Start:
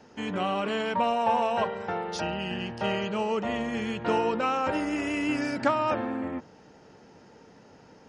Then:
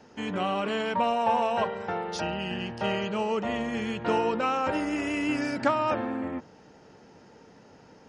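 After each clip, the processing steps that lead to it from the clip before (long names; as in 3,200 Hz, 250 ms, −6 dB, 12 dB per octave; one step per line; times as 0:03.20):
no processing that can be heard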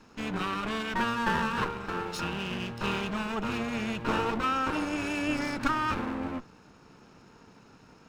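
lower of the sound and its delayed copy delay 0.75 ms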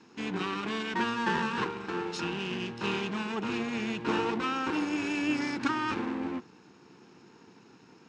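loudspeaker in its box 150–7,500 Hz, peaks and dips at 350 Hz +6 dB, 600 Hz −9 dB, 1,300 Hz −5 dB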